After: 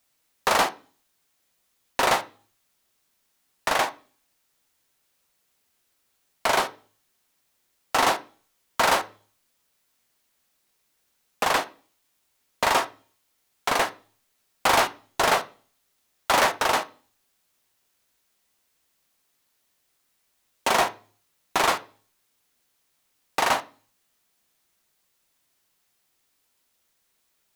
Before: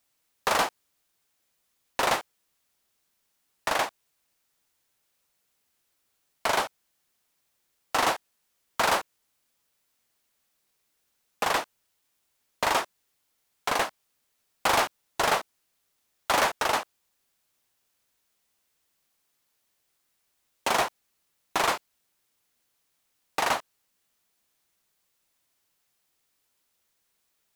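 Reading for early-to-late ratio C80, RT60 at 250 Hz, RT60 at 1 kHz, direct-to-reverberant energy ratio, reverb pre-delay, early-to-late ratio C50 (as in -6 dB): 24.0 dB, 0.50 s, 0.40 s, 10.0 dB, 3 ms, 18.5 dB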